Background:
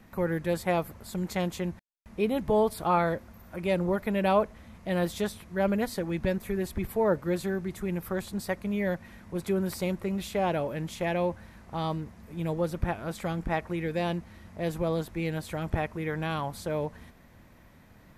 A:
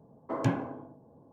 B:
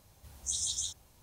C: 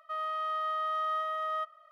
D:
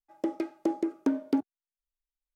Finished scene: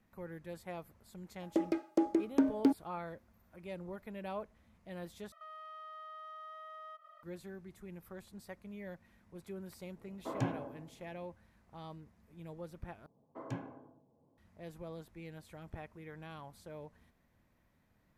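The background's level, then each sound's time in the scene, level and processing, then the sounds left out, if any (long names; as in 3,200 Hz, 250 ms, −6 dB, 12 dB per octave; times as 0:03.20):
background −17.5 dB
0:01.32: mix in D −1.5 dB
0:05.32: overwrite with C −1 dB + downward compressor 4 to 1, threshold −50 dBFS
0:09.96: mix in A −7 dB
0:13.06: overwrite with A −13.5 dB
not used: B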